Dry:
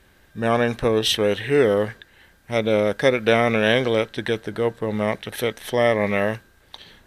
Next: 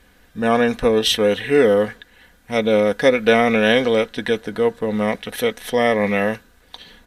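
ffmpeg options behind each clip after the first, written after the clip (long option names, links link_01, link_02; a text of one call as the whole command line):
ffmpeg -i in.wav -af "aecho=1:1:4.1:0.54,volume=1.5dB" out.wav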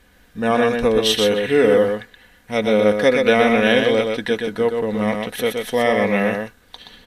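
ffmpeg -i in.wav -af "aecho=1:1:124:0.596,volume=-1dB" out.wav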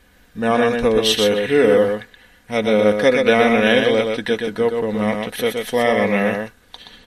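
ffmpeg -i in.wav -af "volume=1dB" -ar 48000 -c:a libmp3lame -b:a 56k out.mp3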